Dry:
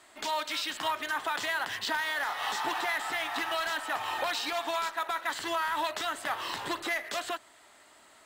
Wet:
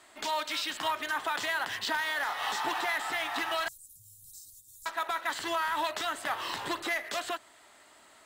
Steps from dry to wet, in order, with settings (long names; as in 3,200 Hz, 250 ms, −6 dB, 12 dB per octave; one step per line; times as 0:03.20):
0:03.68–0:04.86: inverse Chebyshev band-stop filter 420–2,300 Hz, stop band 70 dB